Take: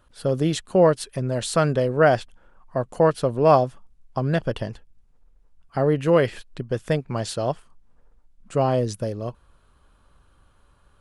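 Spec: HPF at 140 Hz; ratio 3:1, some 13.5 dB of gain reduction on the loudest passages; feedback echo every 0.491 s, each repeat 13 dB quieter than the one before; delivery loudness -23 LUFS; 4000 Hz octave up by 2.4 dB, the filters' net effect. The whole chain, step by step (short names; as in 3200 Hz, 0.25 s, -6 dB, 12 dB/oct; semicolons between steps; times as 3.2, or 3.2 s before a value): HPF 140 Hz; bell 4000 Hz +3 dB; compressor 3:1, threshold -30 dBFS; feedback echo 0.491 s, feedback 22%, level -13 dB; gain +10 dB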